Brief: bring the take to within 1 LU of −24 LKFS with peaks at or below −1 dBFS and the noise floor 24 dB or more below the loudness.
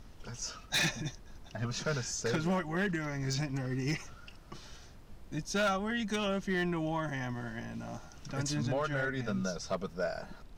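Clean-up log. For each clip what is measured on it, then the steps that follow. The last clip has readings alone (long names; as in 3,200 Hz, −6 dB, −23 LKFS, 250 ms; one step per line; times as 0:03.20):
share of clipped samples 0.7%; peaks flattened at −25.0 dBFS; background noise floor −53 dBFS; target noise floor −59 dBFS; integrated loudness −34.5 LKFS; sample peak −25.0 dBFS; target loudness −24.0 LKFS
→ clipped peaks rebuilt −25 dBFS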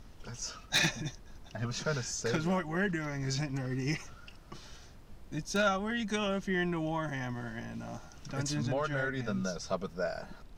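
share of clipped samples 0.0%; background noise floor −53 dBFS; target noise floor −58 dBFS
→ noise reduction from a noise print 6 dB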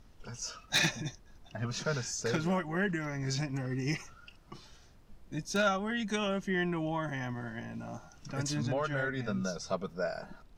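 background noise floor −58 dBFS; integrated loudness −34.0 LKFS; sample peak −16.0 dBFS; target loudness −24.0 LKFS
→ level +10 dB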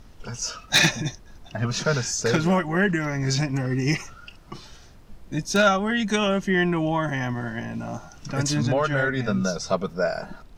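integrated loudness −24.0 LKFS; sample peak −6.0 dBFS; background noise floor −48 dBFS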